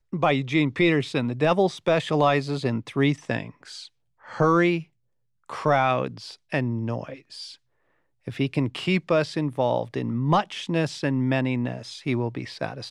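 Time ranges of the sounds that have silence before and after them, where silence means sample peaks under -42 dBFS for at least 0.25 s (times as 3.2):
4.24–4.84
5.49–7.55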